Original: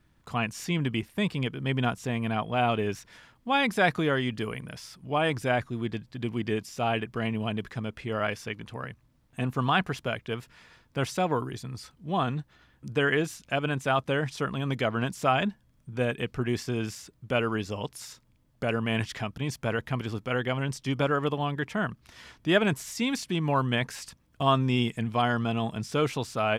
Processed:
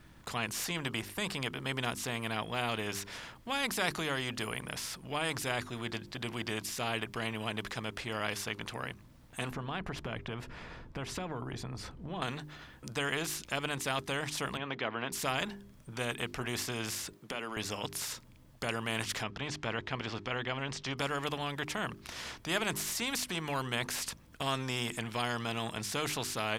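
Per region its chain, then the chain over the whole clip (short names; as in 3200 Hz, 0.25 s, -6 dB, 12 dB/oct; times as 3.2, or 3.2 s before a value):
9.51–12.22 tilt -4 dB/oct + compressor 5:1, threshold -28 dBFS
14.57–15.12 BPF 250–2900 Hz + air absorption 110 m
17.13–17.57 HPF 200 Hz 24 dB/oct + compressor 3:1, threshold -34 dBFS
19.23–20.98 air absorption 150 m + mismatched tape noise reduction encoder only
whole clip: notches 50/100/150/200/250/300/350/400 Hz; spectral compressor 2:1; gain -7 dB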